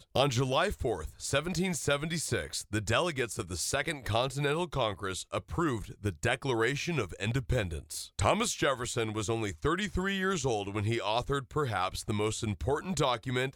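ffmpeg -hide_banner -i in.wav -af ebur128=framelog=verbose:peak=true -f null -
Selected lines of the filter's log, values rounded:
Integrated loudness:
  I:         -31.5 LUFS
  Threshold: -41.5 LUFS
Loudness range:
  LRA:         1.3 LU
  Threshold: -51.7 LUFS
  LRA low:   -32.3 LUFS
  LRA high:  -31.0 LUFS
True peak:
  Peak:      -10.5 dBFS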